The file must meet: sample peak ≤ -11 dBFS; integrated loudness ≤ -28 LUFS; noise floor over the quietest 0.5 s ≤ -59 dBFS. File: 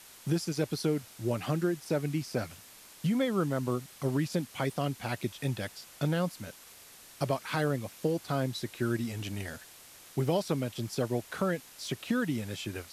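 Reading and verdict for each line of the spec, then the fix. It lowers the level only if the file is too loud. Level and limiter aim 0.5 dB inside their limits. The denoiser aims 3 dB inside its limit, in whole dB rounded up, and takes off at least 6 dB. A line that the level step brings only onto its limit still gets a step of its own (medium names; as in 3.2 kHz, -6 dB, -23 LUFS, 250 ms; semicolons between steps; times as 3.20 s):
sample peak -17.0 dBFS: pass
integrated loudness -33.0 LUFS: pass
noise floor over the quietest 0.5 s -53 dBFS: fail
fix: noise reduction 9 dB, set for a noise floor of -53 dBFS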